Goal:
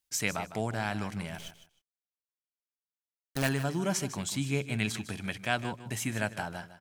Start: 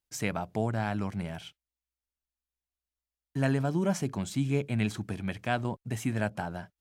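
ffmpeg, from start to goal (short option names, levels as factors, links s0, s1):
-filter_complex "[0:a]tiltshelf=f=1400:g=-5.5,asettb=1/sr,asplit=3[s0][s1][s2];[s0]atrim=end=1.384[s3];[s1]atrim=start=1.38:end=3.49,asetpts=PTS-STARTPTS,afade=t=in:d=0.004:c=qsin,afade=t=out:st=2.106:d=0.004:c=qsin,acrusher=bits=6:dc=4:mix=0:aa=0.000001[s4];[s2]atrim=start=3.486[s5];[s3][s4]acrossfade=d=0.004:c1=hsin:c2=qsin[s6];[s6][s5]acrossfade=d=0.004:c1=qsin:c2=hsin,aecho=1:1:154|308:0.224|0.0425,volume=1.19"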